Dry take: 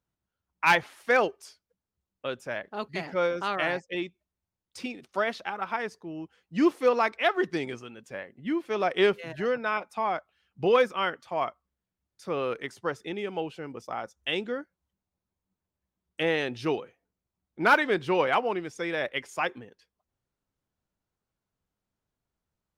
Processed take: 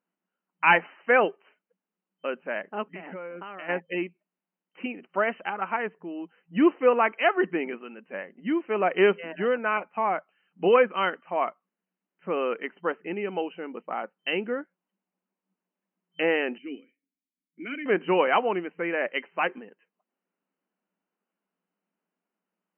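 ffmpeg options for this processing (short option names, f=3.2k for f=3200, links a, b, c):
-filter_complex "[0:a]asplit=3[a][b][c];[a]afade=t=out:st=2.82:d=0.02[d];[b]acompressor=threshold=-37dB:ratio=12:attack=3.2:release=140:knee=1:detection=peak,afade=t=in:st=2.82:d=0.02,afade=t=out:st=3.68:d=0.02[e];[c]afade=t=in:st=3.68:d=0.02[f];[d][e][f]amix=inputs=3:normalize=0,asettb=1/sr,asplit=3[g][h][i];[g]atrim=end=16.584[j];[h]atrim=start=16.58:end=17.86,asetpts=PTS-STARTPTS,afade=t=in:d=0.004:c=qsin,afade=t=out:st=1.276:d=0.004:c=qsin,asplit=3[k][l][m];[k]bandpass=f=270:t=q:w=8,volume=0dB[n];[l]bandpass=f=2.29k:t=q:w=8,volume=-6dB[o];[m]bandpass=f=3.01k:t=q:w=8,volume=-9dB[p];[n][o][p]amix=inputs=3:normalize=0[q];[i]atrim=start=17.856[r];[j][q]acrossfade=d=0.004:c1=hsin:c2=qsin[s];[s][r]acrossfade=d=0.004:c1=qsin:c2=hsin,afftfilt=real='re*between(b*sr/4096,170,3100)':imag='im*between(b*sr/4096,170,3100)':win_size=4096:overlap=0.75,volume=2.5dB"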